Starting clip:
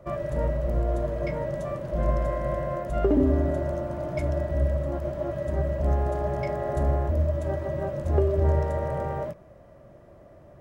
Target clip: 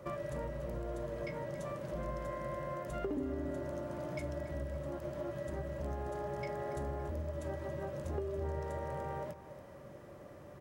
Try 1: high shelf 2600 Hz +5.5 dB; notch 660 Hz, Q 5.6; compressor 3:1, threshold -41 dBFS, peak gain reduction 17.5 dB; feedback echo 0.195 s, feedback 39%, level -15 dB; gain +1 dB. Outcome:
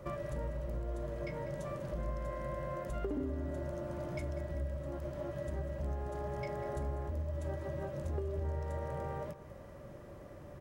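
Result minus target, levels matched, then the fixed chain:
echo 87 ms early; 125 Hz band +2.5 dB
HPF 140 Hz 6 dB/oct; high shelf 2600 Hz +5.5 dB; notch 660 Hz, Q 5.6; compressor 3:1, threshold -41 dBFS, peak gain reduction 16.5 dB; feedback echo 0.282 s, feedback 39%, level -15 dB; gain +1 dB

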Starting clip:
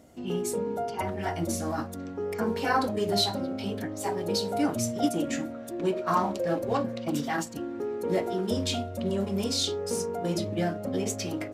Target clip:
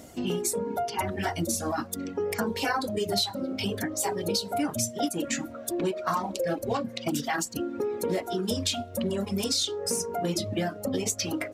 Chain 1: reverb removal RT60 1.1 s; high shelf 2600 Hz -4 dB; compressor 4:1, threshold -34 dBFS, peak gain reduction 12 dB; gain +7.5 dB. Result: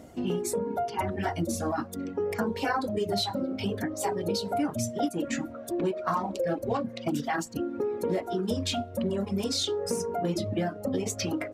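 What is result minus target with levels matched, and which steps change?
4000 Hz band -3.0 dB
change: high shelf 2600 Hz +7 dB

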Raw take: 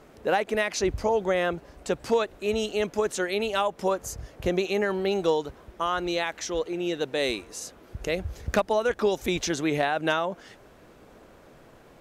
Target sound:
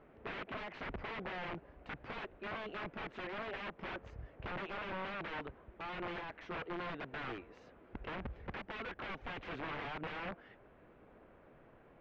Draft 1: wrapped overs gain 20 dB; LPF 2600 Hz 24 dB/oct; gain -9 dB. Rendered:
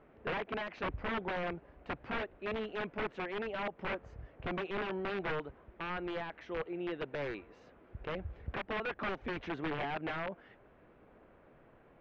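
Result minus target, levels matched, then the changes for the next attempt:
wrapped overs: distortion -15 dB
change: wrapped overs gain 26 dB

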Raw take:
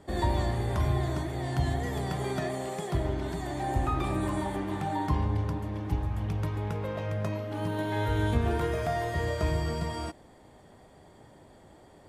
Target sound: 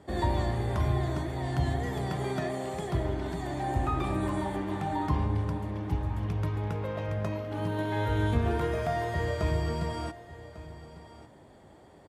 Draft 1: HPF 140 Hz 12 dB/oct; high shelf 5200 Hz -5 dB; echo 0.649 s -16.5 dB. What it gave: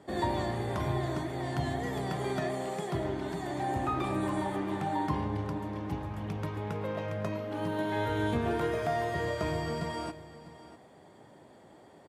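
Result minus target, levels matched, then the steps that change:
echo 0.499 s early; 125 Hz band -3.5 dB
change: HPF 44 Hz 12 dB/oct; change: echo 1.148 s -16.5 dB

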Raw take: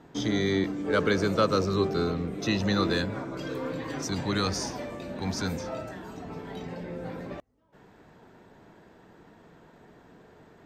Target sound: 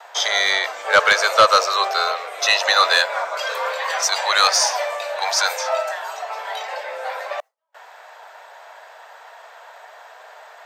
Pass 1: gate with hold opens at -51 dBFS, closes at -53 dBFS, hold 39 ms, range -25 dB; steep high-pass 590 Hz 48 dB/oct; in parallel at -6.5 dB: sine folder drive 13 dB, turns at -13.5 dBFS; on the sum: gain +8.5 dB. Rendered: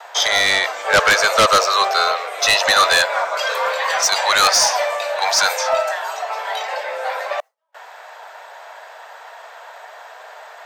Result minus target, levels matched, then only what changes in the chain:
sine folder: distortion +9 dB
change: sine folder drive 7 dB, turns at -13.5 dBFS

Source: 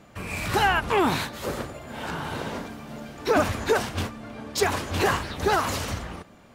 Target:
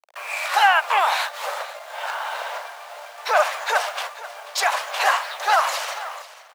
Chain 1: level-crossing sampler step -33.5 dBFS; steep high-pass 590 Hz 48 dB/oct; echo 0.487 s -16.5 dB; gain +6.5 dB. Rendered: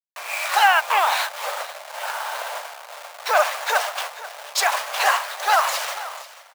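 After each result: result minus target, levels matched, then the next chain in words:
level-crossing sampler: distortion +10 dB; 8000 Hz band +3.0 dB
level-crossing sampler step -42.5 dBFS; steep high-pass 590 Hz 48 dB/oct; echo 0.487 s -16.5 dB; gain +6.5 dB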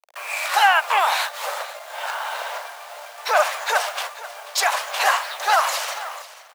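8000 Hz band +3.0 dB
level-crossing sampler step -42.5 dBFS; steep high-pass 590 Hz 48 dB/oct; high shelf 5900 Hz -6 dB; echo 0.487 s -16.5 dB; gain +6.5 dB

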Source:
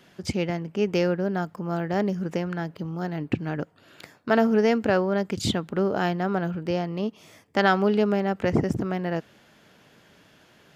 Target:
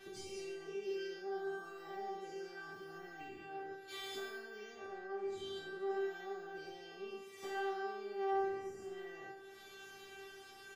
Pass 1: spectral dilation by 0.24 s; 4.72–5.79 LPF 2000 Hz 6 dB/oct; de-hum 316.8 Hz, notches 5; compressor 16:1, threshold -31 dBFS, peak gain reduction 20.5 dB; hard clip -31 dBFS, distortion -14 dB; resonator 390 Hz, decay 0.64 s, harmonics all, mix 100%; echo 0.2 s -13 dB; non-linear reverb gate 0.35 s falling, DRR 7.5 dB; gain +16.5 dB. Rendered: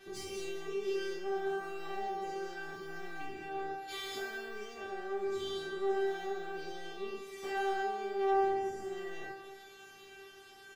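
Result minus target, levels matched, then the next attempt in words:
echo 61 ms late; compressor: peak gain reduction -7 dB
spectral dilation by 0.24 s; 4.72–5.79 LPF 2000 Hz 6 dB/oct; de-hum 316.8 Hz, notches 5; compressor 16:1, threshold -38.5 dBFS, peak gain reduction 27.5 dB; hard clip -31 dBFS, distortion -32 dB; resonator 390 Hz, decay 0.64 s, harmonics all, mix 100%; echo 0.139 s -13 dB; non-linear reverb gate 0.35 s falling, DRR 7.5 dB; gain +16.5 dB

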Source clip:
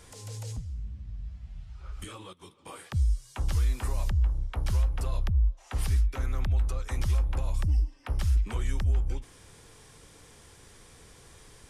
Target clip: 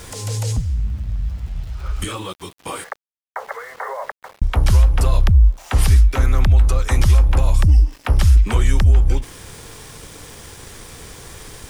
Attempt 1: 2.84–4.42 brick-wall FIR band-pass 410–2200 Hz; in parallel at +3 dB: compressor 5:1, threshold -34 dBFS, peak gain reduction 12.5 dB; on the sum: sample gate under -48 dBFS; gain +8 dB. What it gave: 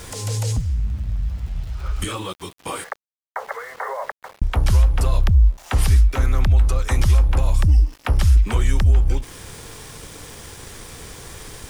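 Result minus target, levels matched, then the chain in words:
compressor: peak gain reduction +6.5 dB
2.84–4.42 brick-wall FIR band-pass 410–2200 Hz; in parallel at +3 dB: compressor 5:1, threshold -26 dBFS, peak gain reduction 6 dB; on the sum: sample gate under -48 dBFS; gain +8 dB

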